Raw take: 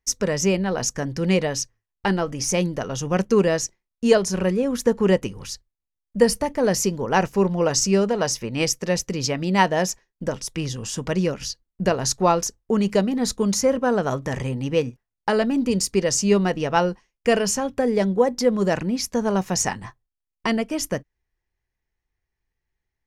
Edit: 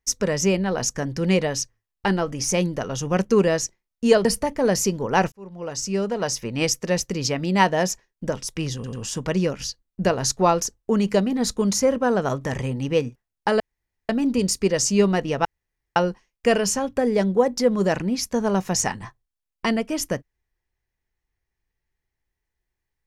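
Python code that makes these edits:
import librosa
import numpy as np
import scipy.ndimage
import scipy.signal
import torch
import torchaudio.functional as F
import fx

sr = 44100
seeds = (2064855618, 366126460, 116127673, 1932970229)

y = fx.edit(x, sr, fx.cut(start_s=4.25, length_s=1.99),
    fx.fade_in_span(start_s=7.31, length_s=1.21),
    fx.stutter(start_s=10.74, slice_s=0.09, count=3),
    fx.insert_room_tone(at_s=15.41, length_s=0.49),
    fx.insert_room_tone(at_s=16.77, length_s=0.51), tone=tone)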